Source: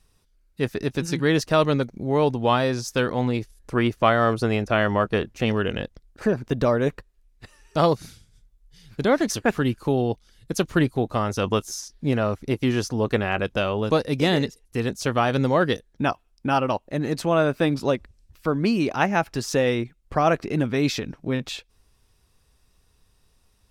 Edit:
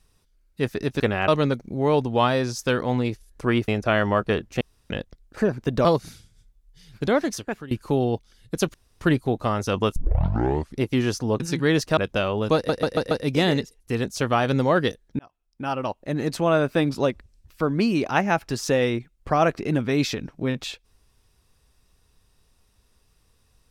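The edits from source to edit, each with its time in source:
1–1.57 swap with 13.1–13.38
3.97–4.52 cut
5.45–5.74 room tone
6.69–7.82 cut
9.02–9.68 fade out, to -20.5 dB
10.71 insert room tone 0.27 s
11.66 tape start 0.84 s
13.96 stutter 0.14 s, 5 plays
16.04–17.06 fade in

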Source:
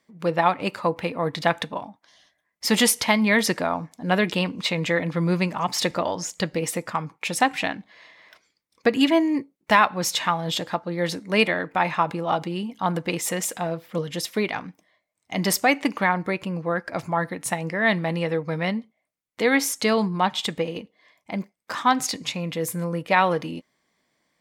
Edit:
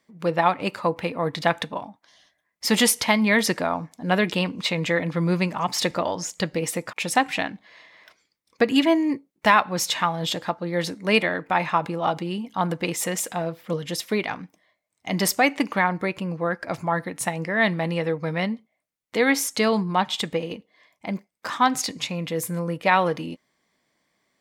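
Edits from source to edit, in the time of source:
6.93–7.18 cut

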